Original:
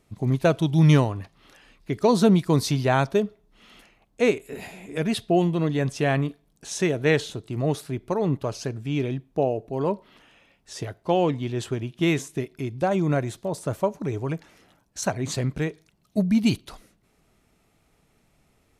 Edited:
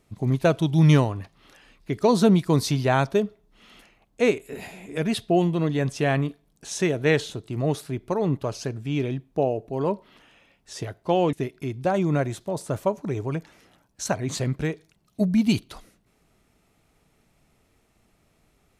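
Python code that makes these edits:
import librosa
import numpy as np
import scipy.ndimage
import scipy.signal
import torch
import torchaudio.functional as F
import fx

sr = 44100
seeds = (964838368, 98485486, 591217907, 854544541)

y = fx.edit(x, sr, fx.cut(start_s=11.33, length_s=0.97), tone=tone)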